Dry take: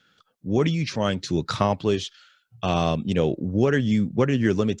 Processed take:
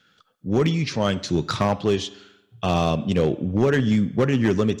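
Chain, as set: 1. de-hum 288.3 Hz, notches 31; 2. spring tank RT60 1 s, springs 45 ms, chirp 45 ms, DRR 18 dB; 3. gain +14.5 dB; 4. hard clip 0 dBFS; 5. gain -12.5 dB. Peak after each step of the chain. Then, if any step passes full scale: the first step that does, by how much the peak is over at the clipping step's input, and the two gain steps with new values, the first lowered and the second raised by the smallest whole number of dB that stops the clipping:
-6.5, -6.5, +8.0, 0.0, -12.5 dBFS; step 3, 8.0 dB; step 3 +6.5 dB, step 5 -4.5 dB

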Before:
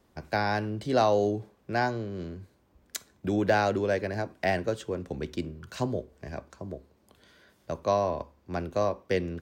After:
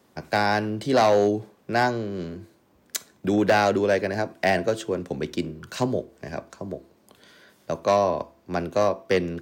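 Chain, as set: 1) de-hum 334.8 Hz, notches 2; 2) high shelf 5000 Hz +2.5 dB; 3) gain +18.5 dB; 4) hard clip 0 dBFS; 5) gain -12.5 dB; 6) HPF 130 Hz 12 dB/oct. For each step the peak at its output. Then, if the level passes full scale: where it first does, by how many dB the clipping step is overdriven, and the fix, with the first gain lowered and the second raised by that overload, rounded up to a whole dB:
-11.5, -11.0, +7.5, 0.0, -12.5, -9.5 dBFS; step 3, 7.5 dB; step 3 +10.5 dB, step 5 -4.5 dB

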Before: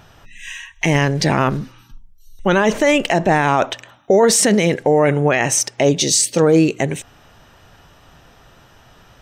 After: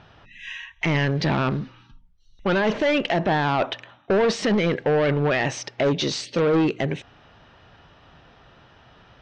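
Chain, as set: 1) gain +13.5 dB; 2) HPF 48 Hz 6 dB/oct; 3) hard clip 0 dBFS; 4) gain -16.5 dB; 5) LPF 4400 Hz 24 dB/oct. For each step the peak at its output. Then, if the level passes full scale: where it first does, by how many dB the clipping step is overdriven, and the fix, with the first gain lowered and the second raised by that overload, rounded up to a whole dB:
+9.5, +9.5, 0.0, -16.5, -14.5 dBFS; step 1, 9.5 dB; step 1 +3.5 dB, step 4 -6.5 dB

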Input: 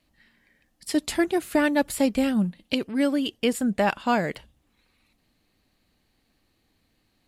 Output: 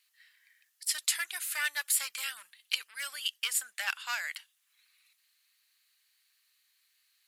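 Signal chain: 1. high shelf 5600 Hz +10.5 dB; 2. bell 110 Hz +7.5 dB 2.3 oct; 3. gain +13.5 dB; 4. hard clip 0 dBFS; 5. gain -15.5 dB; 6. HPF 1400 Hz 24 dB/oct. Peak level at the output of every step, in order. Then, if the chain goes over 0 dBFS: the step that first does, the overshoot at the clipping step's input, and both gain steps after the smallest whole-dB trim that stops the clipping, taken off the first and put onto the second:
-7.0, -6.0, +7.5, 0.0, -15.5, -11.5 dBFS; step 3, 7.5 dB; step 3 +5.5 dB, step 5 -7.5 dB

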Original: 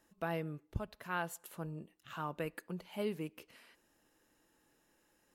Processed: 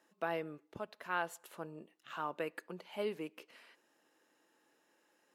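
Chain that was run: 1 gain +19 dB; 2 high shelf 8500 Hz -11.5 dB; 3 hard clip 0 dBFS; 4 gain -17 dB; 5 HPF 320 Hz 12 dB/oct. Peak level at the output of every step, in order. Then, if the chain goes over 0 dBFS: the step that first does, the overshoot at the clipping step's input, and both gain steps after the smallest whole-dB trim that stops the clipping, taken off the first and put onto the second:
-4.0, -4.0, -4.0, -21.0, -21.5 dBFS; no overload

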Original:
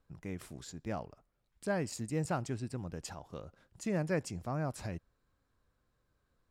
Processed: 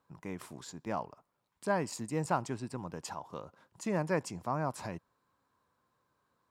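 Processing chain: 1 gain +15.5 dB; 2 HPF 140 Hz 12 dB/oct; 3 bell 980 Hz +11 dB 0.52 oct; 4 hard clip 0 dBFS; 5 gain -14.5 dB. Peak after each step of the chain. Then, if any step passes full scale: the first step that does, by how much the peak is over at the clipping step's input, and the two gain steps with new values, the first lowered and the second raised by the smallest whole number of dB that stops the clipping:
-5.0, -5.0, -2.0, -2.0, -16.5 dBFS; no overload

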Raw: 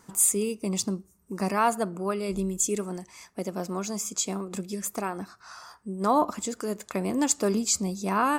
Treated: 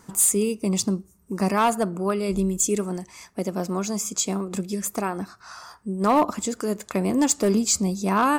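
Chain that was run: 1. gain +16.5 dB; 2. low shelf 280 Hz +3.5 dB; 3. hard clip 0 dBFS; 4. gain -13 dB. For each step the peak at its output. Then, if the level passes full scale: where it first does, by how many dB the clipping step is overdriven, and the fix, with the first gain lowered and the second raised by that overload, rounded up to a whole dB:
+6.5, +6.5, 0.0, -13.0 dBFS; step 1, 6.5 dB; step 1 +9.5 dB, step 4 -6 dB

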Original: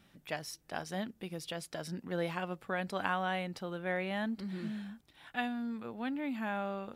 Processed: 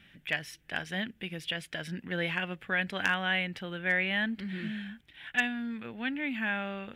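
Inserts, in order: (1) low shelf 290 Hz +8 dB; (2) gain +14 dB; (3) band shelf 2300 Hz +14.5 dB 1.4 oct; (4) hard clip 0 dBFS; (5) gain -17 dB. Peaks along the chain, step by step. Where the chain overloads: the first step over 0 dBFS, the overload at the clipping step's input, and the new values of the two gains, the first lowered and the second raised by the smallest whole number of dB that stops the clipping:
-15.0, -1.0, +7.5, 0.0, -17.0 dBFS; step 3, 7.5 dB; step 2 +6 dB, step 5 -9 dB

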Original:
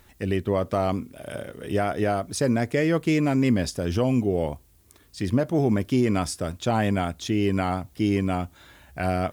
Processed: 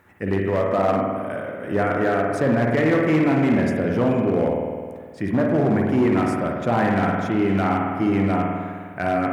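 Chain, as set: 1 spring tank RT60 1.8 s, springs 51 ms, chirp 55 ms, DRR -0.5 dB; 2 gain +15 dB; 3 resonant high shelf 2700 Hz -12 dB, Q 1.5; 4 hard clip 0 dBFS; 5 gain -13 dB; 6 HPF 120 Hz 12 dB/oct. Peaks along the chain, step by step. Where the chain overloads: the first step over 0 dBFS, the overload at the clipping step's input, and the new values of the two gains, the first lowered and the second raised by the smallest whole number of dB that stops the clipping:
-7.5, +7.5, +7.5, 0.0, -13.0, -7.0 dBFS; step 2, 7.5 dB; step 2 +7 dB, step 5 -5 dB

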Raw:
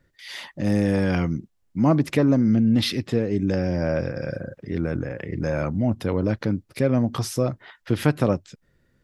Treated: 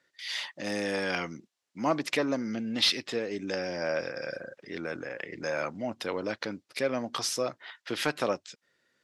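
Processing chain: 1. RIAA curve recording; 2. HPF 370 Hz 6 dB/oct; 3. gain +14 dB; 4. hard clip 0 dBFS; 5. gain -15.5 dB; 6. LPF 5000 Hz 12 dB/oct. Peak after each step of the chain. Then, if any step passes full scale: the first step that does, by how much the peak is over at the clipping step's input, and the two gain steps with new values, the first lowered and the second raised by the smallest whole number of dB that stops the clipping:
-5.0, -5.0, +9.0, 0.0, -15.5, -15.0 dBFS; step 3, 9.0 dB; step 3 +5 dB, step 5 -6.5 dB

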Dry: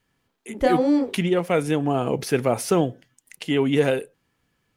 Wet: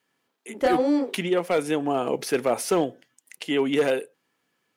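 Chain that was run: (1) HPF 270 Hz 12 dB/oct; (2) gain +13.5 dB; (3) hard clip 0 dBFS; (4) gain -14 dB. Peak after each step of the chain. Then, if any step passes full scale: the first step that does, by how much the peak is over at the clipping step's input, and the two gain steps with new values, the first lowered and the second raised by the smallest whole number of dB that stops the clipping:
-8.0, +5.5, 0.0, -14.0 dBFS; step 2, 5.5 dB; step 2 +7.5 dB, step 4 -8 dB

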